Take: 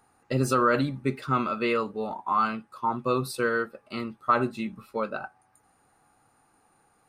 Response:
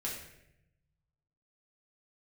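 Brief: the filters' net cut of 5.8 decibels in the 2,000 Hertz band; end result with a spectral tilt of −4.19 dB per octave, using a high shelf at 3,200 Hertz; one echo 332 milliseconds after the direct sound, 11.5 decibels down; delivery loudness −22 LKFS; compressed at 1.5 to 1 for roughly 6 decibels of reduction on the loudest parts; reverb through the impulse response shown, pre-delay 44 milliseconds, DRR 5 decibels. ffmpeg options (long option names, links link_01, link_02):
-filter_complex "[0:a]equalizer=frequency=2000:width_type=o:gain=-6.5,highshelf=frequency=3200:gain=-7.5,acompressor=threshold=-37dB:ratio=1.5,aecho=1:1:332:0.266,asplit=2[link_01][link_02];[1:a]atrim=start_sample=2205,adelay=44[link_03];[link_02][link_03]afir=irnorm=-1:irlink=0,volume=-7dB[link_04];[link_01][link_04]amix=inputs=2:normalize=0,volume=11dB"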